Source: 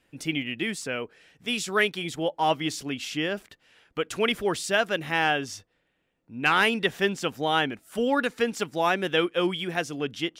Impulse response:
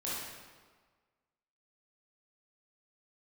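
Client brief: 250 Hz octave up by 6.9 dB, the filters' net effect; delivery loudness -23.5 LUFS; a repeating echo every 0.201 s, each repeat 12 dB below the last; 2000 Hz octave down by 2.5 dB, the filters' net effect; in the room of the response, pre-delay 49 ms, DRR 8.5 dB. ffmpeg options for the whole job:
-filter_complex "[0:a]equalizer=f=250:t=o:g=9,equalizer=f=2k:t=o:g=-3.5,aecho=1:1:201|402|603:0.251|0.0628|0.0157,asplit=2[a][b];[1:a]atrim=start_sample=2205,adelay=49[c];[b][c]afir=irnorm=-1:irlink=0,volume=-12.5dB[d];[a][d]amix=inputs=2:normalize=0,volume=0.5dB"

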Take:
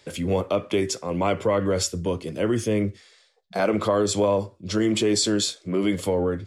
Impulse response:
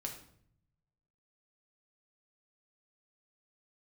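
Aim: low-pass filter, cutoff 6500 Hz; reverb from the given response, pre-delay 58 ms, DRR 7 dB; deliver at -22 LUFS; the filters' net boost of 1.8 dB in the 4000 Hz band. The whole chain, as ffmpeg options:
-filter_complex "[0:a]lowpass=6.5k,equalizer=f=4k:t=o:g=3,asplit=2[a][b];[1:a]atrim=start_sample=2205,adelay=58[c];[b][c]afir=irnorm=-1:irlink=0,volume=-6dB[d];[a][d]amix=inputs=2:normalize=0,volume=1dB"

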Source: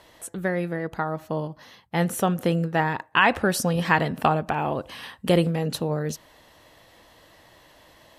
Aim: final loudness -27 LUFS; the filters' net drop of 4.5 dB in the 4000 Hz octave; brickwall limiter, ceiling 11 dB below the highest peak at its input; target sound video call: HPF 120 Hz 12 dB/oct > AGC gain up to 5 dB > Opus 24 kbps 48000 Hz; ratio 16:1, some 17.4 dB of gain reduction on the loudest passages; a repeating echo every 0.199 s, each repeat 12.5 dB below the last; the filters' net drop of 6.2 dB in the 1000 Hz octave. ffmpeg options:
-af "equalizer=f=1k:t=o:g=-8,equalizer=f=4k:t=o:g=-6,acompressor=threshold=-33dB:ratio=16,alimiter=level_in=6dB:limit=-24dB:level=0:latency=1,volume=-6dB,highpass=120,aecho=1:1:199|398|597:0.237|0.0569|0.0137,dynaudnorm=m=5dB,volume=14.5dB" -ar 48000 -c:a libopus -b:a 24k

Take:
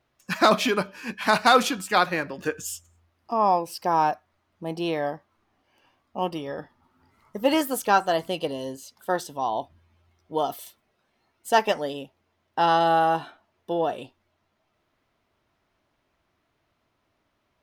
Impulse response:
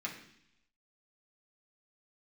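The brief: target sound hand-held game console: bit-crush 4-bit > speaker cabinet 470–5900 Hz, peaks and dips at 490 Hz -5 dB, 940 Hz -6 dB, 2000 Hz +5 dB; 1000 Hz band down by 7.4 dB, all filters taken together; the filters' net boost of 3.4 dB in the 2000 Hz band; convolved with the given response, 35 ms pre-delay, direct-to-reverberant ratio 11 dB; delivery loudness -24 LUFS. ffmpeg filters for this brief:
-filter_complex "[0:a]equalizer=f=1k:t=o:g=-8.5,equalizer=f=2k:t=o:g=6,asplit=2[a][b];[1:a]atrim=start_sample=2205,adelay=35[c];[b][c]afir=irnorm=-1:irlink=0,volume=-13dB[d];[a][d]amix=inputs=2:normalize=0,acrusher=bits=3:mix=0:aa=0.000001,highpass=470,equalizer=f=490:t=q:w=4:g=-5,equalizer=f=940:t=q:w=4:g=-6,equalizer=f=2k:t=q:w=4:g=5,lowpass=f=5.9k:w=0.5412,lowpass=f=5.9k:w=1.3066,volume=2dB"

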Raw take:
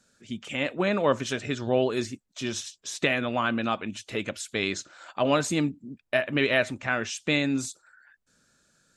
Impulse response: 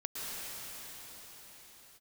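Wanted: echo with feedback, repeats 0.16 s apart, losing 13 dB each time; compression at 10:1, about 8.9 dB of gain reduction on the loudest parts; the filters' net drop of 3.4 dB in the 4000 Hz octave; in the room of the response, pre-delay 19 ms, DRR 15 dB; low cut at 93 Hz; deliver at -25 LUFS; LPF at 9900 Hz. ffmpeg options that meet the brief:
-filter_complex "[0:a]highpass=93,lowpass=9.9k,equalizer=f=4k:t=o:g=-4.5,acompressor=threshold=-27dB:ratio=10,aecho=1:1:160|320|480:0.224|0.0493|0.0108,asplit=2[a][b];[1:a]atrim=start_sample=2205,adelay=19[c];[b][c]afir=irnorm=-1:irlink=0,volume=-19dB[d];[a][d]amix=inputs=2:normalize=0,volume=8.5dB"

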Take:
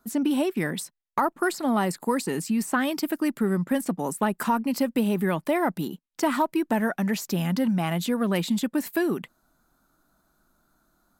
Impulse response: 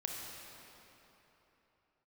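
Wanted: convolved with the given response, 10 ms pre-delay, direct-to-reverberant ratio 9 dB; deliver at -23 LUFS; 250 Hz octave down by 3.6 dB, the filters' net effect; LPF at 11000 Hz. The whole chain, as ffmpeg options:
-filter_complex "[0:a]lowpass=11k,equalizer=f=250:t=o:g=-4.5,asplit=2[a][b];[1:a]atrim=start_sample=2205,adelay=10[c];[b][c]afir=irnorm=-1:irlink=0,volume=-10dB[d];[a][d]amix=inputs=2:normalize=0,volume=4.5dB"

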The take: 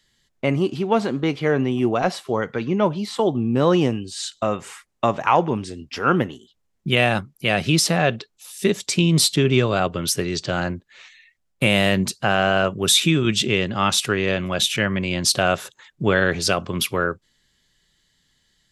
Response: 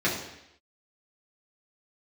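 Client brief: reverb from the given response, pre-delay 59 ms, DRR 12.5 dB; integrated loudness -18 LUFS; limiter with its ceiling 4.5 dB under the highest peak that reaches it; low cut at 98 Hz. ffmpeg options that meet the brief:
-filter_complex "[0:a]highpass=98,alimiter=limit=-8dB:level=0:latency=1,asplit=2[a][b];[1:a]atrim=start_sample=2205,adelay=59[c];[b][c]afir=irnorm=-1:irlink=0,volume=-25.5dB[d];[a][d]amix=inputs=2:normalize=0,volume=3.5dB"

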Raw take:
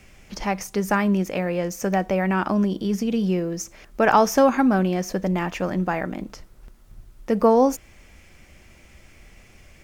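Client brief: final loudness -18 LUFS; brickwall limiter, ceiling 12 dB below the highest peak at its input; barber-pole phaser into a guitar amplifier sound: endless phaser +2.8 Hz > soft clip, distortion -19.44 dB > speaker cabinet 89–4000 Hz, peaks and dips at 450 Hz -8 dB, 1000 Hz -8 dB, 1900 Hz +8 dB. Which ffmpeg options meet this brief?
-filter_complex "[0:a]alimiter=limit=-15.5dB:level=0:latency=1,asplit=2[a][b];[b]afreqshift=2.8[c];[a][c]amix=inputs=2:normalize=1,asoftclip=threshold=-20dB,highpass=89,equalizer=f=450:t=q:w=4:g=-8,equalizer=f=1k:t=q:w=4:g=-8,equalizer=f=1.9k:t=q:w=4:g=8,lowpass=f=4k:w=0.5412,lowpass=f=4k:w=1.3066,volume=13dB"

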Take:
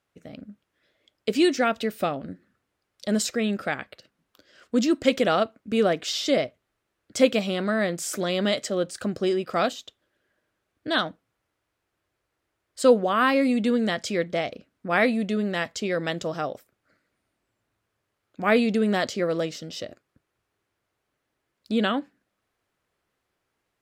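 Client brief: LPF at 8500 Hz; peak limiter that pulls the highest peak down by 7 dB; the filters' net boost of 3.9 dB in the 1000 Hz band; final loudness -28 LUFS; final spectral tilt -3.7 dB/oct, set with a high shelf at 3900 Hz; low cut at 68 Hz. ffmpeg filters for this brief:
-af "highpass=68,lowpass=8.5k,equalizer=f=1k:t=o:g=5,highshelf=f=3.9k:g=7,volume=-3.5dB,alimiter=limit=-14dB:level=0:latency=1"

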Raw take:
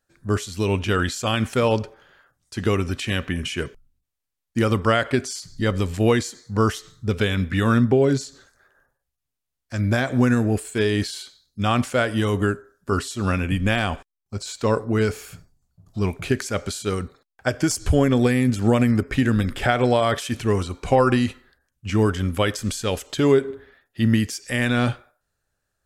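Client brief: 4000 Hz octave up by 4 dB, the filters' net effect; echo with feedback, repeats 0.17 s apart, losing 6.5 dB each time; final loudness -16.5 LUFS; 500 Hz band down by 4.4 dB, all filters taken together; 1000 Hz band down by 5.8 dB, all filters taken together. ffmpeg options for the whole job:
-af "equalizer=f=500:t=o:g=-4,equalizer=f=1k:t=o:g=-7.5,equalizer=f=4k:t=o:g=6,aecho=1:1:170|340|510|680|850|1020:0.473|0.222|0.105|0.0491|0.0231|0.0109,volume=6.5dB"

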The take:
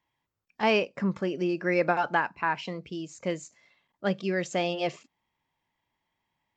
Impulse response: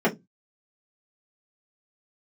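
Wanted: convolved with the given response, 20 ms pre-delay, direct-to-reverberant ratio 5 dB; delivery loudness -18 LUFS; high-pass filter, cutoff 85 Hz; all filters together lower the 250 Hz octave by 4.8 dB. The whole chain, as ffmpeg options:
-filter_complex "[0:a]highpass=85,equalizer=f=250:t=o:g=-8,asplit=2[a][b];[1:a]atrim=start_sample=2205,adelay=20[c];[b][c]afir=irnorm=-1:irlink=0,volume=-21dB[d];[a][d]amix=inputs=2:normalize=0,volume=10.5dB"

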